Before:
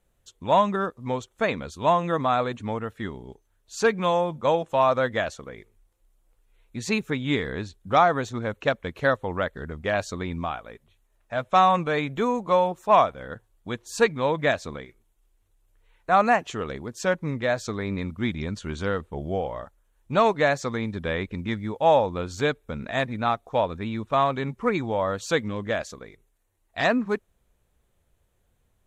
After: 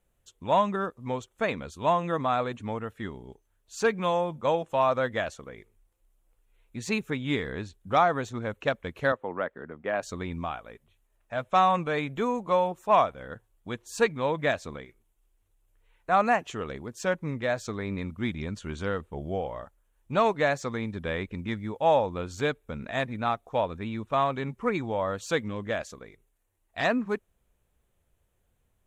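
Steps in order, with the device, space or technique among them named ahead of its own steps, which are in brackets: exciter from parts (in parallel at -11.5 dB: high-pass 2.3 kHz 24 dB/octave + saturation -33.5 dBFS, distortion -8 dB + high-pass 2.7 kHz 24 dB/octave); 9.12–10.03 s: on the sum: three-band isolator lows -19 dB, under 180 Hz, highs -16 dB, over 2.4 kHz; trim -3.5 dB

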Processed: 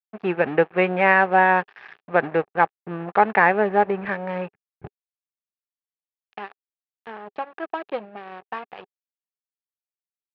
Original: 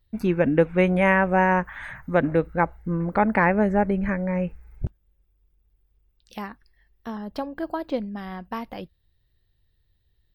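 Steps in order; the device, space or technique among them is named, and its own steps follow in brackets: blown loudspeaker (crossover distortion -35 dBFS; cabinet simulation 190–3600 Hz, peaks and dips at 260 Hz -10 dB, 410 Hz +7 dB, 780 Hz +9 dB, 1.2 kHz +5 dB, 1.7 kHz +7 dB, 2.6 kHz +7 dB); trim -1 dB

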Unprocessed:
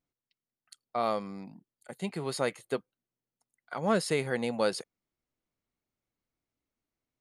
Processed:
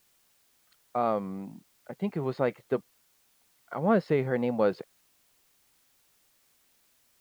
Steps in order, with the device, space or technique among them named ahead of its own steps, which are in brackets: cassette deck with a dirty head (tape spacing loss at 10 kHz 43 dB; wow and flutter; white noise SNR 35 dB); trim +5.5 dB

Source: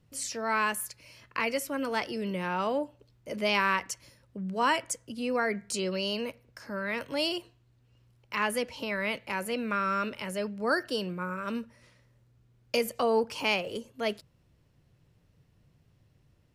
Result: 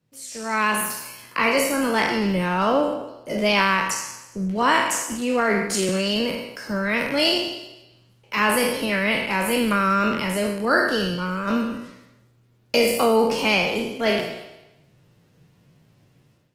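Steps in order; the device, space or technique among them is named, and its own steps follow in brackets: spectral sustain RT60 0.97 s; dynamic bell 190 Hz, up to +5 dB, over -47 dBFS, Q 1.2; 5.02–5.89 s: high-pass 170 Hz 24 dB/octave; video call (high-pass 120 Hz 24 dB/octave; level rider gain up to 13 dB; trim -5 dB; Opus 16 kbps 48 kHz)

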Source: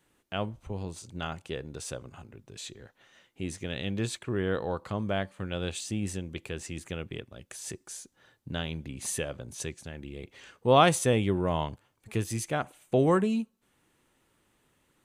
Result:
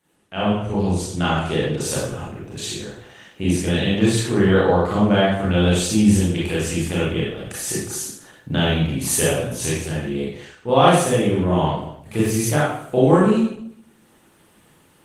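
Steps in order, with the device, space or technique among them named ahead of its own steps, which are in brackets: far-field microphone of a smart speaker (reverberation RT60 0.70 s, pre-delay 27 ms, DRR -6.5 dB; high-pass 98 Hz 6 dB/octave; level rider gain up to 10 dB; trim -1 dB; Opus 20 kbps 48 kHz)

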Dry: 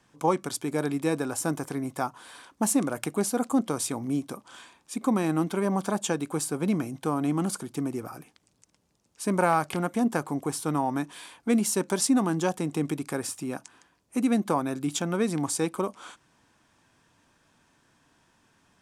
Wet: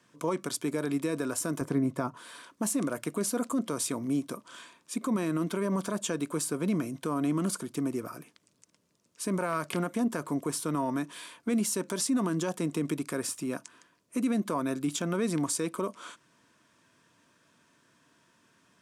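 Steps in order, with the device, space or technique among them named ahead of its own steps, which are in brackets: PA system with an anti-feedback notch (high-pass 130 Hz 12 dB/octave; Butterworth band-stop 800 Hz, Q 4.6; peak limiter -20.5 dBFS, peak gain reduction 9.5 dB); 1.61–2.17 s: tilt EQ -2.5 dB/octave

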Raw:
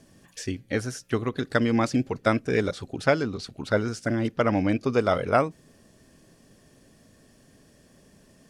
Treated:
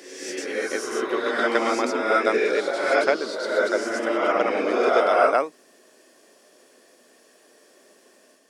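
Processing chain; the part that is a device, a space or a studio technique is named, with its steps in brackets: ghost voice (reverse; reverberation RT60 1.4 s, pre-delay 93 ms, DRR -4.5 dB; reverse; high-pass 340 Hz 24 dB/octave)

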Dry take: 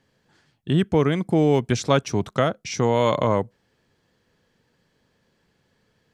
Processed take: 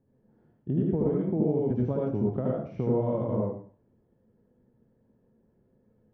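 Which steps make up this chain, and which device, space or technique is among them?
television next door (compression 3:1, threshold -25 dBFS, peak gain reduction 9 dB; low-pass 480 Hz 12 dB/octave; reverberation RT60 0.45 s, pre-delay 71 ms, DRR -4.5 dB); trim -2 dB

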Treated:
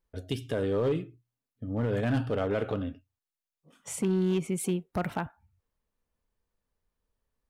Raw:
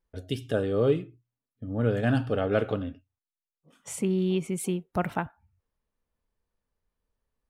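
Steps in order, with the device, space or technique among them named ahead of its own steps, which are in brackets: limiter into clipper (peak limiter -18 dBFS, peak gain reduction 6 dB; hard clipper -21.5 dBFS, distortion -20 dB)

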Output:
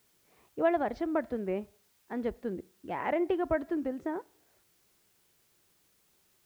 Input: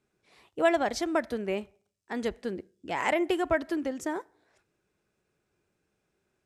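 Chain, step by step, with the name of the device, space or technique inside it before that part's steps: cassette deck with a dirty head (tape spacing loss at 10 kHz 43 dB; wow and flutter; white noise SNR 35 dB)

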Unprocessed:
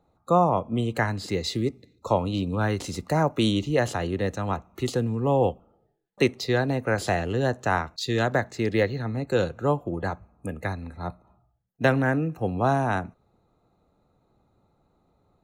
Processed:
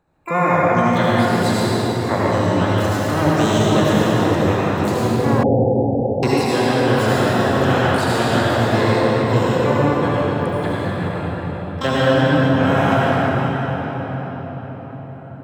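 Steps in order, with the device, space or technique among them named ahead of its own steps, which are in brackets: shimmer-style reverb (harmony voices +12 st -5 dB; reverberation RT60 5.8 s, pre-delay 66 ms, DRR -8 dB); 5.43–6.23 s: steep low-pass 820 Hz 96 dB/octave; trim -2 dB

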